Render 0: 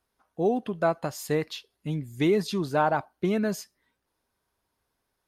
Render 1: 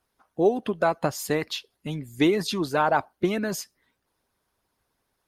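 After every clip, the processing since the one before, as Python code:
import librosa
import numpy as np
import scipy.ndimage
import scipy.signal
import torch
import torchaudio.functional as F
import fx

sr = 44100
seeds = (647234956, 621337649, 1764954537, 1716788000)

y = fx.hpss(x, sr, part='harmonic', gain_db=-9)
y = y * 10.0 ** (6.5 / 20.0)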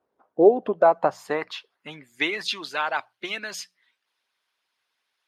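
y = fx.hum_notches(x, sr, base_hz=60, count=3)
y = fx.filter_sweep_bandpass(y, sr, from_hz=480.0, to_hz=2900.0, start_s=0.42, end_s=2.63, q=1.3)
y = y * 10.0 ** (7.0 / 20.0)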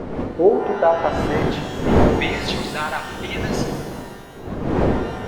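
y = fx.dmg_wind(x, sr, seeds[0], corner_hz=430.0, level_db=-24.0)
y = fx.rev_shimmer(y, sr, seeds[1], rt60_s=1.7, semitones=12, shimmer_db=-8, drr_db=5.0)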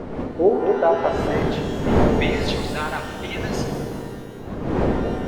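y = fx.echo_bbd(x, sr, ms=225, stages=1024, feedback_pct=59, wet_db=-6.5)
y = y * 10.0 ** (-2.5 / 20.0)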